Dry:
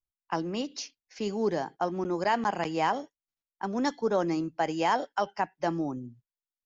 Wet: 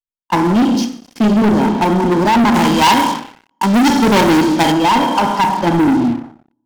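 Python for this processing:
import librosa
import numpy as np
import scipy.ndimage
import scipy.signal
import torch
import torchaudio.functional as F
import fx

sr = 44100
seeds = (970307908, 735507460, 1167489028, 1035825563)

y = fx.small_body(x, sr, hz=(240.0, 930.0, 3200.0), ring_ms=30, db=16)
y = fx.level_steps(y, sr, step_db=10)
y = fx.low_shelf(y, sr, hz=240.0, db=7.0)
y = fx.rev_schroeder(y, sr, rt60_s=1.2, comb_ms=26, drr_db=5.0)
y = fx.leveller(y, sr, passes=5)
y = fx.high_shelf(y, sr, hz=2200.0, db=10.0, at=(2.54, 4.72))
y = fx.end_taper(y, sr, db_per_s=120.0)
y = F.gain(torch.from_numpy(y), -2.0).numpy()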